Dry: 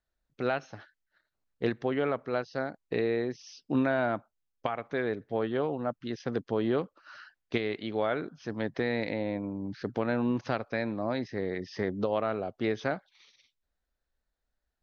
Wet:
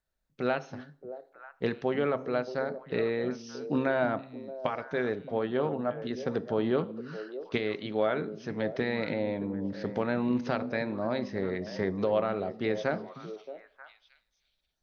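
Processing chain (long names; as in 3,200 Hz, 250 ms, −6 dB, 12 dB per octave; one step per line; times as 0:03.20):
echo through a band-pass that steps 312 ms, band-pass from 180 Hz, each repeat 1.4 octaves, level −7 dB
on a send at −12 dB: convolution reverb RT60 0.45 s, pre-delay 3 ms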